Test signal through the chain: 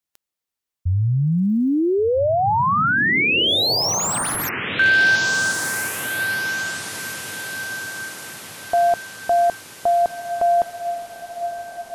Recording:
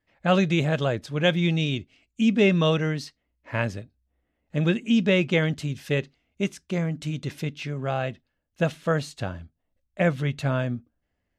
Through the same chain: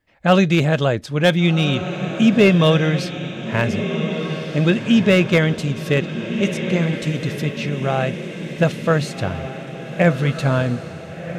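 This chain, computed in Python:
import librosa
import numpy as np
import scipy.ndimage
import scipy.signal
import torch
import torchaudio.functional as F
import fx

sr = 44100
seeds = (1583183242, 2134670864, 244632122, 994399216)

y = fx.echo_diffused(x, sr, ms=1524, feedback_pct=53, wet_db=-9)
y = fx.slew_limit(y, sr, full_power_hz=240.0)
y = F.gain(torch.from_numpy(y), 6.5).numpy()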